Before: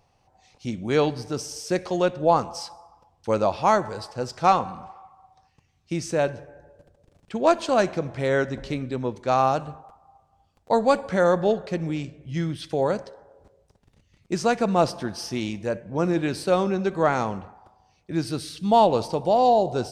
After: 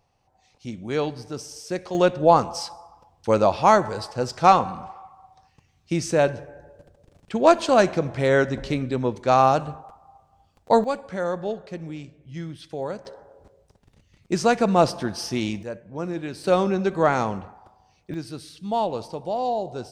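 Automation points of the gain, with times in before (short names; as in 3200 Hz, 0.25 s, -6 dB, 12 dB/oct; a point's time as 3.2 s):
-4 dB
from 1.95 s +3.5 dB
from 10.84 s -7 dB
from 13.05 s +2.5 dB
from 15.63 s -6.5 dB
from 16.44 s +1.5 dB
from 18.14 s -7 dB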